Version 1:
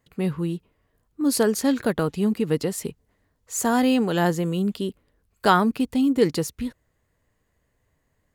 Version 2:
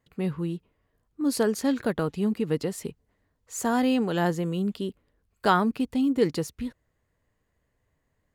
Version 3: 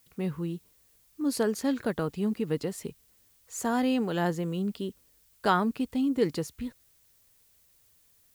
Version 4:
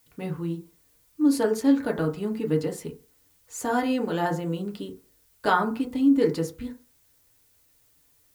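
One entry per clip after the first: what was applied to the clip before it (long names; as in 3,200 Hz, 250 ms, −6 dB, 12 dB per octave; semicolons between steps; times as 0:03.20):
high-shelf EQ 6,200 Hz −5.5 dB; level −3.5 dB
background noise blue −61 dBFS; level −3 dB
feedback delay network reverb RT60 0.34 s, low-frequency decay 0.9×, high-frequency decay 0.35×, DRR 1 dB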